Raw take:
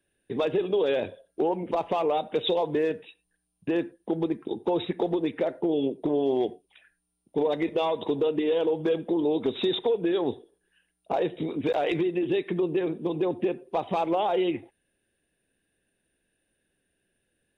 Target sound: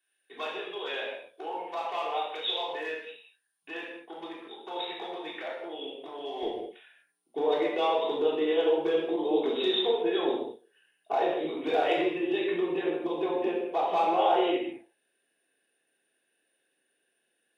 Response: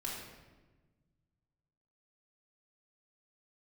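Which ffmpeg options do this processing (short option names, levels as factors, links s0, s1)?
-filter_complex "[0:a]asetnsamples=n=441:p=0,asendcmd='6.43 highpass f 490',highpass=1100[s0];[1:a]atrim=start_sample=2205,afade=t=out:st=0.32:d=0.01,atrim=end_sample=14553,asetrate=48510,aresample=44100[s1];[s0][s1]afir=irnorm=-1:irlink=0,volume=1.33"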